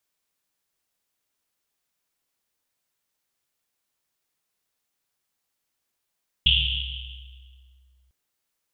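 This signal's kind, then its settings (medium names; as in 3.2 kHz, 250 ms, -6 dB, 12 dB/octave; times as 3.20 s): Risset drum length 1.65 s, pitch 64 Hz, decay 2.66 s, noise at 3.1 kHz, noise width 720 Hz, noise 65%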